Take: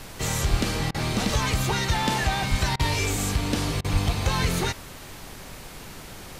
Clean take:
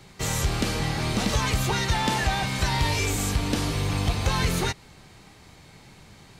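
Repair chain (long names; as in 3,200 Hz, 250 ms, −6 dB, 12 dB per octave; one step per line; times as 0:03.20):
high-pass at the plosives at 0:00.50/0:02.50/0:03.92
repair the gap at 0:00.91/0:02.76/0:03.81, 33 ms
noise reduction from a noise print 9 dB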